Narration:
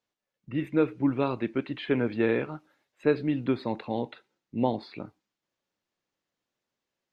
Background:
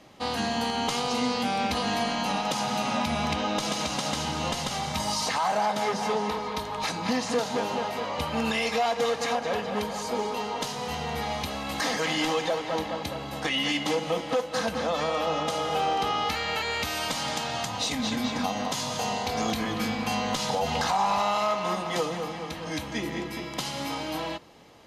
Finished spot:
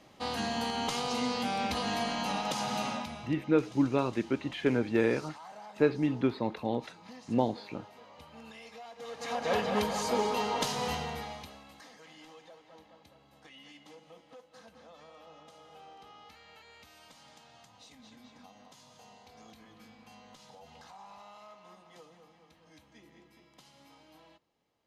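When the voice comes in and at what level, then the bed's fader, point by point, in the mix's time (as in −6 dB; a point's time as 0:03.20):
2.75 s, −1.5 dB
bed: 0:02.85 −5 dB
0:03.37 −22.5 dB
0:08.93 −22.5 dB
0:09.53 0 dB
0:10.87 0 dB
0:11.89 −26.5 dB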